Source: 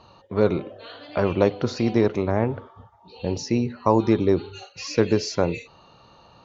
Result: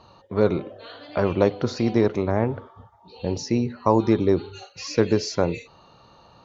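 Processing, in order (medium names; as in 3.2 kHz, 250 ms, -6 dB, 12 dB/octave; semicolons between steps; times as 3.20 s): peaking EQ 2.7 kHz -3 dB 0.41 oct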